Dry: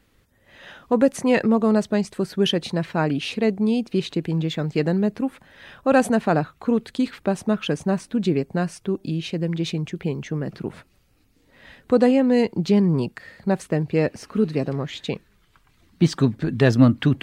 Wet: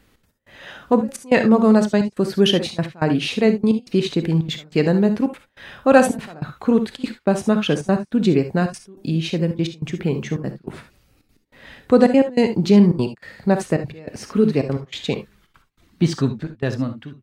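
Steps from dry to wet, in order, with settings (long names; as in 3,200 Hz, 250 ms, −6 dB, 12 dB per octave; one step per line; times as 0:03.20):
fade-out on the ending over 1.85 s
gate pattern "xx.x..xxxxx" 194 BPM −24 dB
reverb whose tail is shaped and stops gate 90 ms rising, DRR 8.5 dB
level +4 dB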